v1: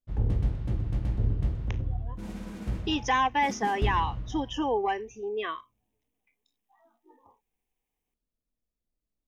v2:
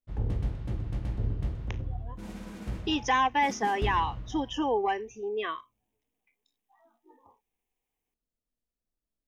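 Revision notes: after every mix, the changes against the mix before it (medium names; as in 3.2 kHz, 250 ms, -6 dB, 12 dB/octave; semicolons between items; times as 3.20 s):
background: add bass shelf 340 Hz -4 dB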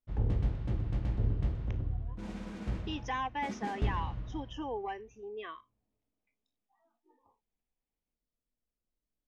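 speech -10.0 dB; master: add distance through air 65 m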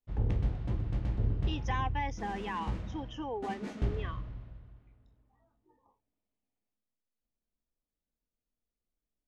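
speech: entry -1.40 s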